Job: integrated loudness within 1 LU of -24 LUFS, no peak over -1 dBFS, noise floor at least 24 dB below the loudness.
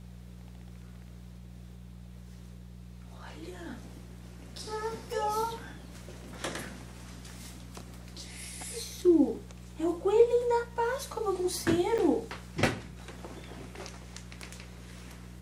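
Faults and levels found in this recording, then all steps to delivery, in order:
dropouts 1; longest dropout 7.6 ms; hum 60 Hz; highest harmonic 180 Hz; hum level -44 dBFS; loudness -30.5 LUFS; peak level -10.5 dBFS; loudness target -24.0 LUFS
-> interpolate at 11.98 s, 7.6 ms; de-hum 60 Hz, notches 3; trim +6.5 dB

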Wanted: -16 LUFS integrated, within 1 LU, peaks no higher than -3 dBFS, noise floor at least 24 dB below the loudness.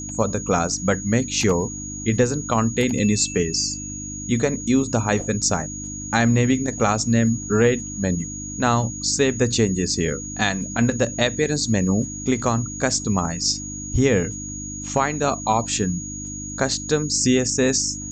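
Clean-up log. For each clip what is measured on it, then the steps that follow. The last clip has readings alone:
hum 50 Hz; highest harmonic 300 Hz; hum level -32 dBFS; steady tone 6.7 kHz; tone level -32 dBFS; loudness -21.5 LUFS; peak level -5.5 dBFS; loudness target -16.0 LUFS
-> de-hum 50 Hz, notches 6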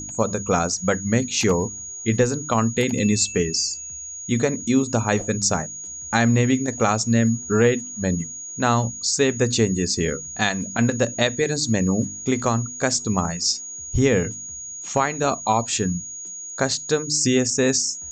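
hum not found; steady tone 6.7 kHz; tone level -32 dBFS
-> band-stop 6.7 kHz, Q 30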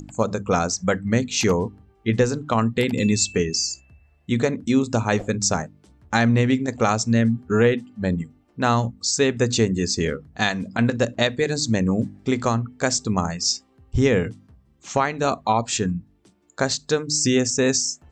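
steady tone not found; loudness -22.0 LUFS; peak level -5.0 dBFS; loudness target -16.0 LUFS
-> trim +6 dB; peak limiter -3 dBFS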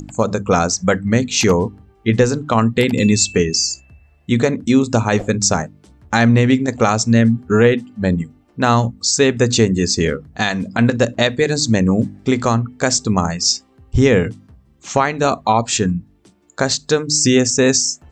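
loudness -16.5 LUFS; peak level -3.0 dBFS; noise floor -54 dBFS

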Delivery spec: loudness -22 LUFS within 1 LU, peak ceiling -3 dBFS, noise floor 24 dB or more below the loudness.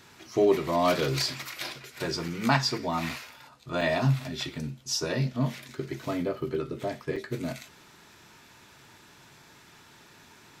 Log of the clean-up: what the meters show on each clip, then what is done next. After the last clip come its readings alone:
dropouts 4; longest dropout 4.8 ms; loudness -29.0 LUFS; peak level -8.5 dBFS; loudness target -22.0 LUFS
-> interpolate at 2.28/3.09/3.81/7.16 s, 4.8 ms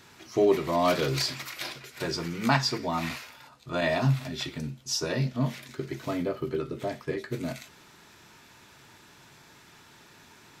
dropouts 0; loudness -29.0 LUFS; peak level -8.5 dBFS; loudness target -22.0 LUFS
-> trim +7 dB; peak limiter -3 dBFS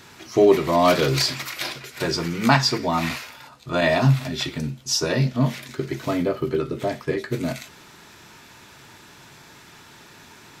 loudness -22.5 LUFS; peak level -3.0 dBFS; noise floor -48 dBFS

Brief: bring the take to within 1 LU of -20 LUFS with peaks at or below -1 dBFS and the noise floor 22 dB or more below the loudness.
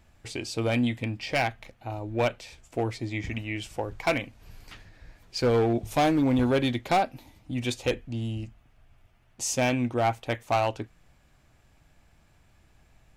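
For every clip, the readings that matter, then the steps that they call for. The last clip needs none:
clipped samples 1.2%; clipping level -18.0 dBFS; loudness -28.0 LUFS; peak level -18.0 dBFS; loudness target -20.0 LUFS
-> clip repair -18 dBFS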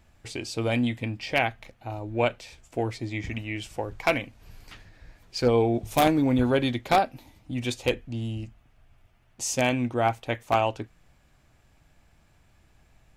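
clipped samples 0.0%; loudness -27.0 LUFS; peak level -9.0 dBFS; loudness target -20.0 LUFS
-> trim +7 dB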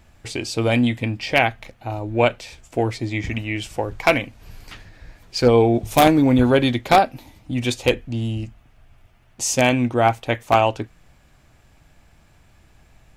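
loudness -20.0 LUFS; peak level -2.0 dBFS; noise floor -55 dBFS

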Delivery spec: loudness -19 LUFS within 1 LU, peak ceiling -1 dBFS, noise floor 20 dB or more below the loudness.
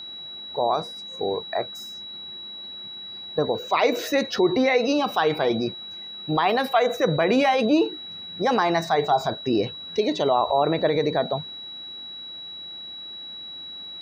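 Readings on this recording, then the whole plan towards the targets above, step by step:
tick rate 18 per s; steady tone 3.9 kHz; tone level -35 dBFS; loudness -23.5 LUFS; peak level -8.0 dBFS; loudness target -19.0 LUFS
-> de-click; band-stop 3.9 kHz, Q 30; trim +4.5 dB

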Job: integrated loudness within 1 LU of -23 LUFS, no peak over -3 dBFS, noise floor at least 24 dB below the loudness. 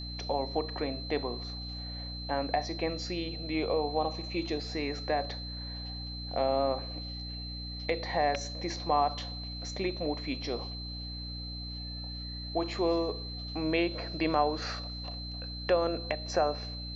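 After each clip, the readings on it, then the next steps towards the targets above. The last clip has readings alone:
hum 60 Hz; highest harmonic 300 Hz; hum level -39 dBFS; steady tone 4.1 kHz; tone level -41 dBFS; loudness -33.0 LUFS; peak level -13.5 dBFS; loudness target -23.0 LUFS
-> de-hum 60 Hz, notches 5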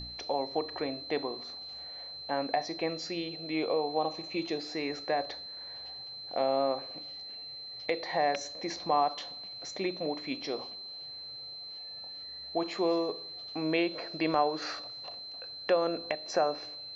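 hum not found; steady tone 4.1 kHz; tone level -41 dBFS
-> band-stop 4.1 kHz, Q 30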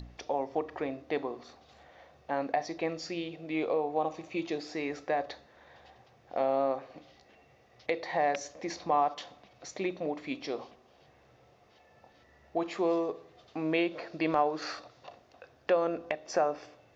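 steady tone not found; loudness -33.0 LUFS; peak level -13.5 dBFS; loudness target -23.0 LUFS
-> trim +10 dB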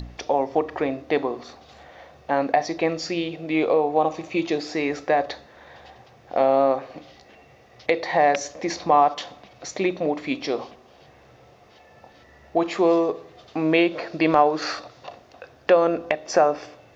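loudness -23.0 LUFS; peak level -3.5 dBFS; noise floor -52 dBFS

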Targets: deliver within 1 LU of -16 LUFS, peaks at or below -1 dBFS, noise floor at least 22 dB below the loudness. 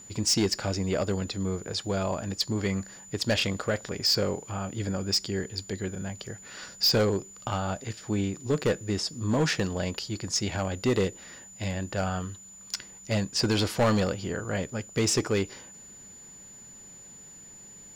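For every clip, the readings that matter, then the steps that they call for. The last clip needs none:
clipped samples 0.7%; clipping level -18.5 dBFS; steady tone 7 kHz; tone level -46 dBFS; loudness -28.5 LUFS; peak level -18.5 dBFS; loudness target -16.0 LUFS
-> clip repair -18.5 dBFS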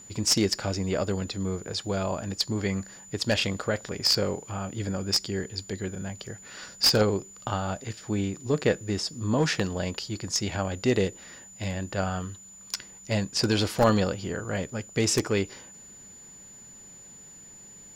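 clipped samples 0.0%; steady tone 7 kHz; tone level -46 dBFS
-> band-stop 7 kHz, Q 30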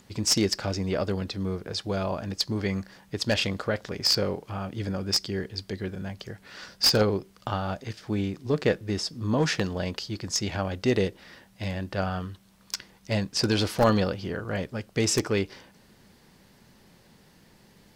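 steady tone not found; loudness -28.0 LUFS; peak level -9.0 dBFS; loudness target -16.0 LUFS
-> trim +12 dB; peak limiter -1 dBFS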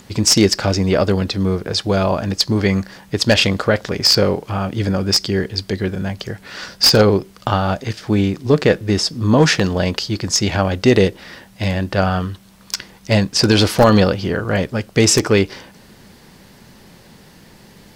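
loudness -16.5 LUFS; peak level -1.0 dBFS; noise floor -46 dBFS

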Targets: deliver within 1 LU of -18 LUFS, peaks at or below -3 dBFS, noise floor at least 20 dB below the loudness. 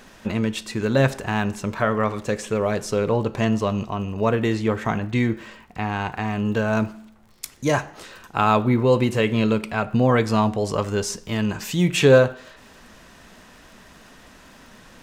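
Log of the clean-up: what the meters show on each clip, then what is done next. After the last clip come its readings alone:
tick rate 45 per s; loudness -22.0 LUFS; peak level -3.0 dBFS; loudness target -18.0 LUFS
-> de-click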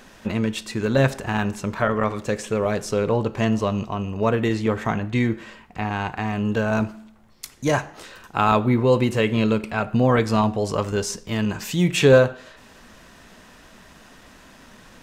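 tick rate 0.80 per s; loudness -22.0 LUFS; peak level -3.0 dBFS; loudness target -18.0 LUFS
-> trim +4 dB; peak limiter -3 dBFS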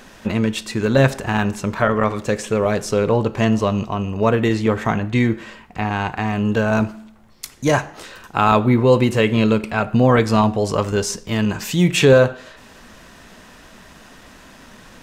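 loudness -18.5 LUFS; peak level -3.0 dBFS; noise floor -45 dBFS

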